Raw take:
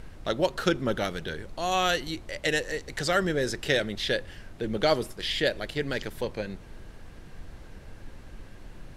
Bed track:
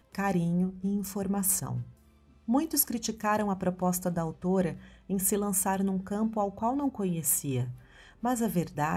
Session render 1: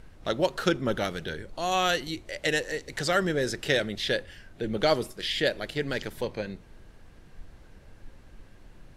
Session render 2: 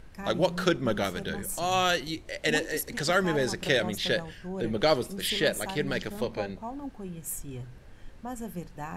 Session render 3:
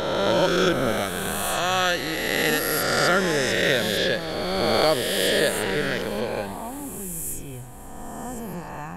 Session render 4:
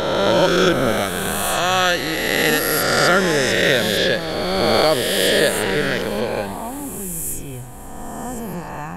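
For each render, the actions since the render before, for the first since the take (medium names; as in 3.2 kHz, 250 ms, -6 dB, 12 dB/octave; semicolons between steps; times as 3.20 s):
noise print and reduce 6 dB
add bed track -9 dB
reverse spectral sustain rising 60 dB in 2.42 s; thinning echo 271 ms, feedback 62%, level -17 dB
trim +5 dB; peak limiter -3 dBFS, peak gain reduction 2 dB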